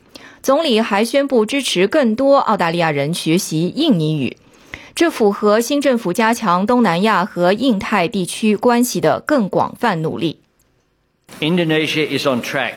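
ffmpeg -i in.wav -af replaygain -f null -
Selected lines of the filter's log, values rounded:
track_gain = -3.6 dB
track_peak = 0.513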